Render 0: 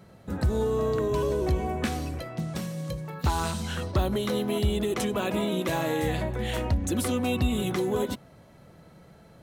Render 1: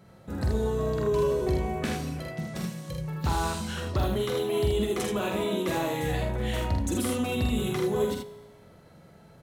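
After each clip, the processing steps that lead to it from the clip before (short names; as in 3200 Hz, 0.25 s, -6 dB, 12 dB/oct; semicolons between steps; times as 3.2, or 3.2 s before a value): resonator 52 Hz, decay 1.3 s, harmonics all, mix 50%; on a send: early reflections 46 ms -4 dB, 79 ms -4.5 dB; on the sum: gain +2 dB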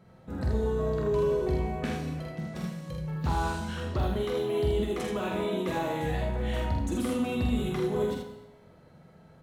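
high shelf 4200 Hz -9 dB; non-linear reverb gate 0.29 s falling, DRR 6 dB; gain -2.5 dB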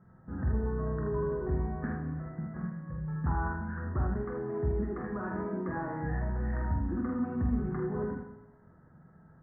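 Chebyshev low-pass 1800 Hz, order 6; bell 540 Hz -11 dB 1 oct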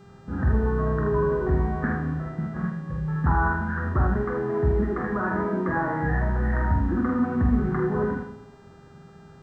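buzz 400 Hz, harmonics 21, -63 dBFS -7 dB/oct; dynamic EQ 1600 Hz, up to +5 dB, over -51 dBFS, Q 0.72; gain +8 dB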